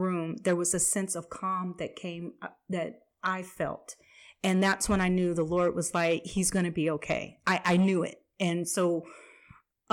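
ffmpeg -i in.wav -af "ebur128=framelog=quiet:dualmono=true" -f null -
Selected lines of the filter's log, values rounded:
Integrated loudness:
  I:         -26.1 LUFS
  Threshold: -36.7 LUFS
Loudness range:
  LRA:         6.6 LU
  Threshold: -46.6 LUFS
  LRA low:   -31.4 LUFS
  LRA high:  -24.9 LUFS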